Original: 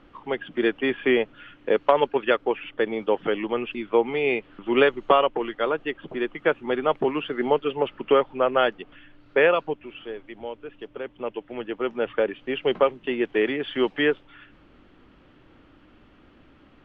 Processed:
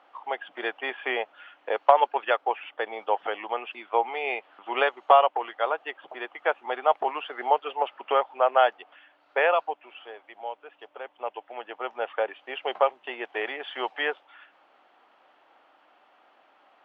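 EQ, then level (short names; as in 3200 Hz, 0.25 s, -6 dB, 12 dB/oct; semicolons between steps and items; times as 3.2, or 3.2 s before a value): resonant high-pass 750 Hz, resonance Q 3.5; -4.0 dB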